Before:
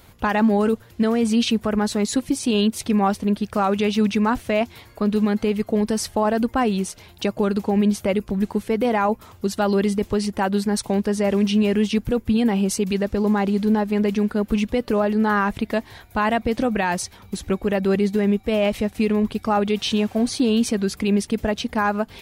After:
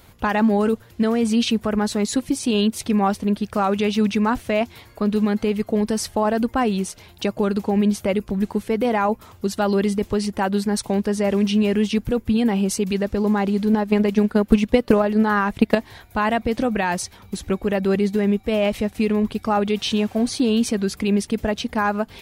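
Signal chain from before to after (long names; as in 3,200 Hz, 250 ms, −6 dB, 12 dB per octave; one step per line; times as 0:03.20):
0:13.73–0:15.75: transient designer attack +10 dB, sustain −3 dB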